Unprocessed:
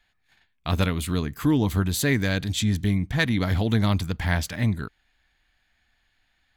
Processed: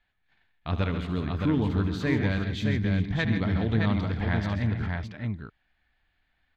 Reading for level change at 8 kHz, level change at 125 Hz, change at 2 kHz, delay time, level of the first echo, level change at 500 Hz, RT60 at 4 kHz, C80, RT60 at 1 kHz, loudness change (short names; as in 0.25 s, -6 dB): under -20 dB, -2.0 dB, -4.0 dB, 74 ms, -12.0 dB, -2.5 dB, none, none, none, -3.0 dB